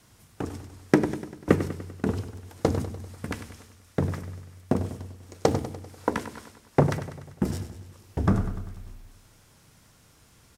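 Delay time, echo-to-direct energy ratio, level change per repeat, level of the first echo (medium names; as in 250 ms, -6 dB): 98 ms, -10.5 dB, -5.0 dB, -12.0 dB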